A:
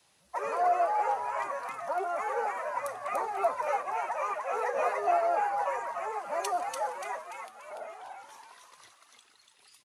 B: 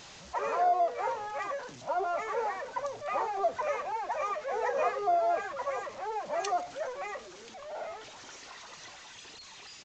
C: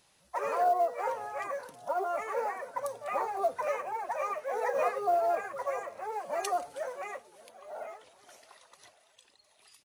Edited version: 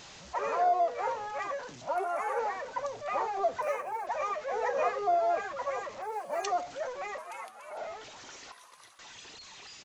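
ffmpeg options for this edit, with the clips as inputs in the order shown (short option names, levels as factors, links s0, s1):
-filter_complex "[0:a]asplit=3[s0][s1][s2];[2:a]asplit=2[s3][s4];[1:a]asplit=6[s5][s6][s7][s8][s9][s10];[s5]atrim=end=1.962[s11];[s0]atrim=start=1.958:end=2.392[s12];[s6]atrim=start=2.388:end=3.622[s13];[s3]atrim=start=3.618:end=4.072[s14];[s7]atrim=start=4.068:end=6.022[s15];[s4]atrim=start=6.018:end=6.442[s16];[s8]atrim=start=6.438:end=7.182[s17];[s1]atrim=start=7.178:end=7.772[s18];[s9]atrim=start=7.768:end=8.522[s19];[s2]atrim=start=8.518:end=8.992[s20];[s10]atrim=start=8.988[s21];[s11][s12]acrossfade=d=0.004:c1=hsin:c2=hsin[s22];[s22][s13]acrossfade=d=0.004:c1=hsin:c2=hsin[s23];[s23][s14]acrossfade=d=0.004:c1=hsin:c2=hsin[s24];[s24][s15]acrossfade=d=0.004:c1=hsin:c2=hsin[s25];[s25][s16]acrossfade=d=0.004:c1=hsin:c2=hsin[s26];[s26][s17]acrossfade=d=0.004:c1=hsin:c2=hsin[s27];[s27][s18]acrossfade=d=0.004:c1=hsin:c2=hsin[s28];[s28][s19]acrossfade=d=0.004:c1=hsin:c2=hsin[s29];[s29][s20]acrossfade=d=0.004:c1=hsin:c2=hsin[s30];[s30][s21]acrossfade=d=0.004:c1=hsin:c2=hsin"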